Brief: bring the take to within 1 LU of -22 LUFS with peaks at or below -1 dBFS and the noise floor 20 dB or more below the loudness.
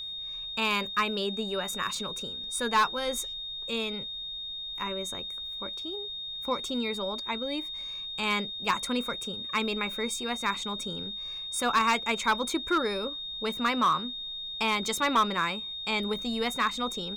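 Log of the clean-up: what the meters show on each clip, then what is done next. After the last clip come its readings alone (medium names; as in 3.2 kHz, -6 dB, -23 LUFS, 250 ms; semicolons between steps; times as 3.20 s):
clipped samples 0.4%; clipping level -18.0 dBFS; steady tone 3.7 kHz; tone level -35 dBFS; loudness -29.5 LUFS; peak level -18.0 dBFS; loudness target -22.0 LUFS
-> clip repair -18 dBFS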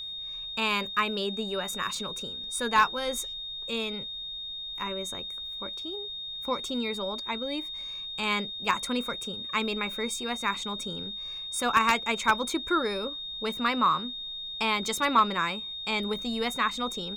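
clipped samples 0.0%; steady tone 3.7 kHz; tone level -35 dBFS
-> band-stop 3.7 kHz, Q 30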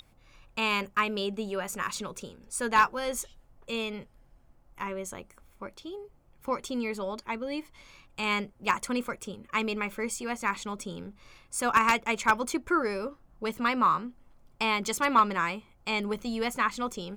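steady tone not found; loudness -29.5 LUFS; peak level -9.0 dBFS; loudness target -22.0 LUFS
-> trim +7.5 dB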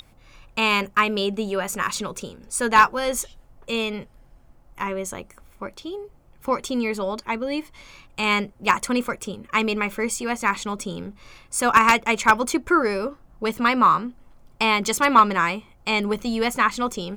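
loudness -22.0 LUFS; peak level -1.5 dBFS; noise floor -53 dBFS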